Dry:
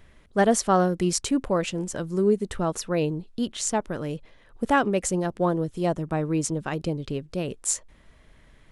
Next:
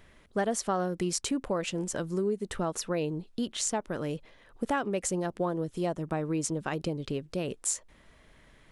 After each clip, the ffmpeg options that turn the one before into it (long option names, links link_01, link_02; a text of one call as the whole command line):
ffmpeg -i in.wav -af "lowshelf=frequency=140:gain=-6.5,acompressor=threshold=-28dB:ratio=3" out.wav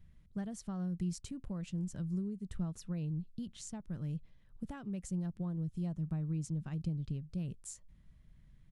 ffmpeg -i in.wav -af "firequalizer=gain_entry='entry(170,0);entry(250,-13);entry(430,-23);entry(4400,-18)':delay=0.05:min_phase=1,volume=1dB" out.wav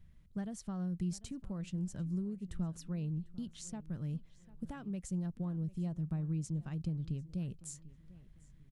ffmpeg -i in.wav -filter_complex "[0:a]asplit=2[link_01][link_02];[link_02]adelay=746,lowpass=frequency=4000:poles=1,volume=-19dB,asplit=2[link_03][link_04];[link_04]adelay=746,lowpass=frequency=4000:poles=1,volume=0.36,asplit=2[link_05][link_06];[link_06]adelay=746,lowpass=frequency=4000:poles=1,volume=0.36[link_07];[link_01][link_03][link_05][link_07]amix=inputs=4:normalize=0" out.wav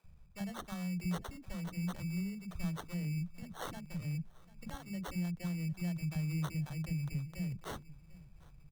ffmpeg -i in.wav -filter_complex "[0:a]equalizer=frequency=250:width_type=o:width=0.33:gain=-10,equalizer=frequency=400:width_type=o:width=0.33:gain=-9,equalizer=frequency=6300:width_type=o:width=0.33:gain=10,acrusher=samples=18:mix=1:aa=0.000001,acrossover=split=300[link_01][link_02];[link_01]adelay=40[link_03];[link_03][link_02]amix=inputs=2:normalize=0,volume=2dB" out.wav